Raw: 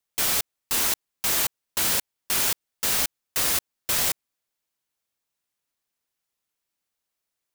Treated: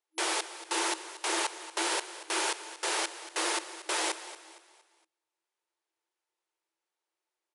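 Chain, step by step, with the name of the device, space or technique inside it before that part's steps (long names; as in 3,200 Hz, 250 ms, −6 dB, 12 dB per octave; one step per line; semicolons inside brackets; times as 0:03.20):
echo with shifted repeats 232 ms, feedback 39%, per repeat +41 Hz, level −14 dB
brick-wall band-pass 320–11,000 Hz
inside a helmet (high-shelf EQ 3,600 Hz −9.5 dB; hollow resonant body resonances 320/890 Hz, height 9 dB, ringing for 45 ms)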